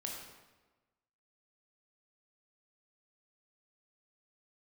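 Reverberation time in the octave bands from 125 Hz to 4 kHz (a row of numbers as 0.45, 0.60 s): 1.3, 1.3, 1.2, 1.2, 1.0, 0.90 s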